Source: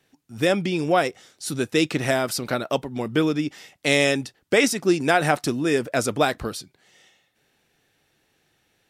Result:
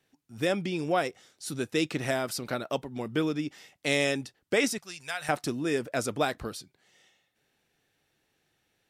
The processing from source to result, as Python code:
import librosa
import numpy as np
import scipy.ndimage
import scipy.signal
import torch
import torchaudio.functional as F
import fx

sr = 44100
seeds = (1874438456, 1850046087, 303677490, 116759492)

y = fx.tone_stack(x, sr, knobs='10-0-10', at=(4.78, 5.29))
y = y * 10.0 ** (-7.0 / 20.0)